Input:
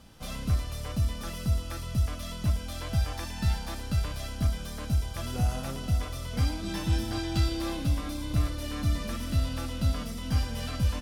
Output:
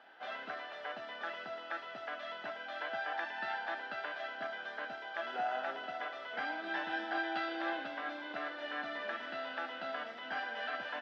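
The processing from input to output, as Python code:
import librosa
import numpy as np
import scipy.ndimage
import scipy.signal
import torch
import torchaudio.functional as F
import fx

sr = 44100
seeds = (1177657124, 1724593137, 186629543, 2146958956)

y = fx.cabinet(x, sr, low_hz=460.0, low_slope=24, high_hz=2700.0, hz=(500.0, 740.0, 1100.0, 1600.0, 2400.0), db=(-10, 4, -9, 8, -7))
y = y * 10.0 ** (3.5 / 20.0)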